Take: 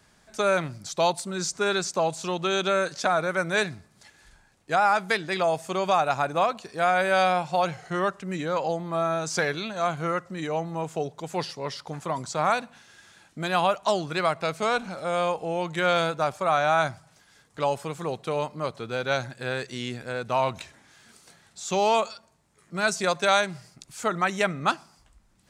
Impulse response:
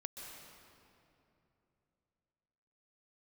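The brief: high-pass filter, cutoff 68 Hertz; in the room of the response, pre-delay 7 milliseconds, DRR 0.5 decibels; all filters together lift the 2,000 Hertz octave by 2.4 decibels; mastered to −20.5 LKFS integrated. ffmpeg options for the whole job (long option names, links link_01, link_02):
-filter_complex "[0:a]highpass=68,equalizer=frequency=2000:width_type=o:gain=3.5,asplit=2[link_01][link_02];[1:a]atrim=start_sample=2205,adelay=7[link_03];[link_02][link_03]afir=irnorm=-1:irlink=0,volume=2dB[link_04];[link_01][link_04]amix=inputs=2:normalize=0,volume=2.5dB"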